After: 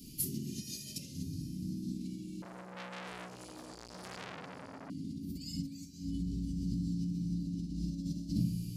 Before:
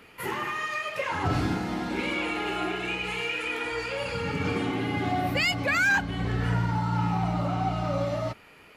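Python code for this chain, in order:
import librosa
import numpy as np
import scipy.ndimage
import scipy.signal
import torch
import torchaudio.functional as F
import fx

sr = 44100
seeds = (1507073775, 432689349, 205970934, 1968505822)

y = fx.low_shelf(x, sr, hz=120.0, db=-9.5)
y = fx.room_shoebox(y, sr, seeds[0], volume_m3=700.0, walls='furnished', distance_m=3.0)
y = fx.dynamic_eq(y, sr, hz=200.0, q=1.0, threshold_db=-37.0, ratio=4.0, max_db=5)
y = fx.over_compress(y, sr, threshold_db=-33.0, ratio=-1.0)
y = scipy.signal.sosfilt(scipy.signal.ellip(3, 1.0, 70, [230.0, 5100.0], 'bandstop', fs=sr, output='sos'), y)
y = fx.echo_diffused(y, sr, ms=553, feedback_pct=41, wet_db=-15.0)
y = fx.transformer_sat(y, sr, knee_hz=3400.0, at=(2.42, 4.9))
y = y * 10.0 ** (1.5 / 20.0)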